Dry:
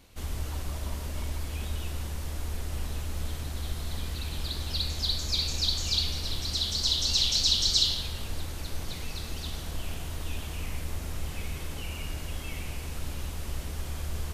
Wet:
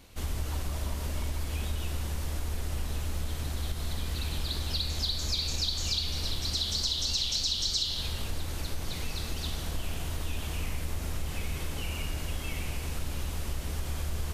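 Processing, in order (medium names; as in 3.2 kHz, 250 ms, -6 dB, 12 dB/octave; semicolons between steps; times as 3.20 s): compression, threshold -29 dBFS, peak gain reduction 10 dB; trim +2.5 dB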